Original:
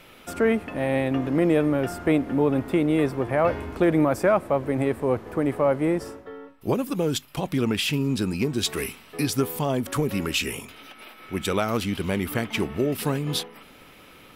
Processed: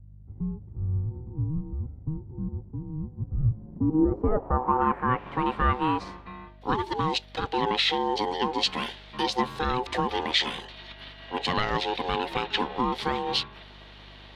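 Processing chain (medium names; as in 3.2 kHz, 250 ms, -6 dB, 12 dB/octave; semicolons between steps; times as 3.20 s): ring modulator 630 Hz; hum 50 Hz, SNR 23 dB; low-pass sweep 120 Hz -> 3.9 kHz, 3.53–5.39 s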